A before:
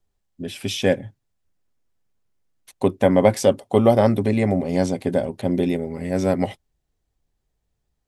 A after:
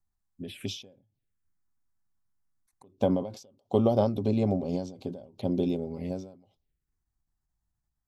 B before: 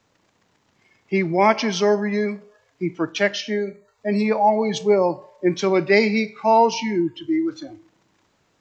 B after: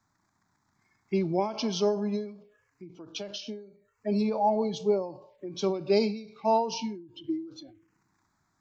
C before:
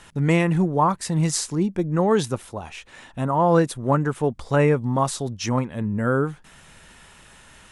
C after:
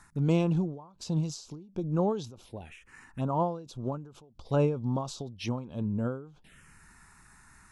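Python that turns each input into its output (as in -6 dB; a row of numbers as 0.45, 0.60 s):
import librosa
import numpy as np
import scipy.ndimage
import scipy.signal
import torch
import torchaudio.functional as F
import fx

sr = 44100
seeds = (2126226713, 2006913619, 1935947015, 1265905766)

y = fx.env_phaser(x, sr, low_hz=490.0, high_hz=1900.0, full_db=-23.5)
y = fx.end_taper(y, sr, db_per_s=100.0)
y = y * 10.0 ** (-5.5 / 20.0)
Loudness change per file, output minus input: -9.0, -8.5, -9.0 LU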